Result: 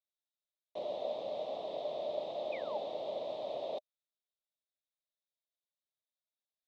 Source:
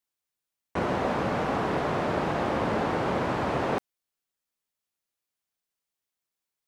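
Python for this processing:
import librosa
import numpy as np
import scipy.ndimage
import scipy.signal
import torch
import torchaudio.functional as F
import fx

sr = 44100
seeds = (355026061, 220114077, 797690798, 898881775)

y = fx.spec_paint(x, sr, seeds[0], shape='fall', start_s=2.52, length_s=0.26, low_hz=770.0, high_hz=2600.0, level_db=-23.0)
y = fx.double_bandpass(y, sr, hz=1500.0, octaves=2.6)
y = y * librosa.db_to_amplitude(-2.0)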